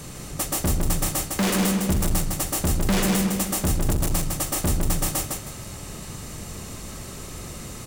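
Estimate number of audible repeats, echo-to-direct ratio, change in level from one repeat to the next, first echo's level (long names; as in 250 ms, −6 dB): 3, −3.0 dB, −11.5 dB, −3.5 dB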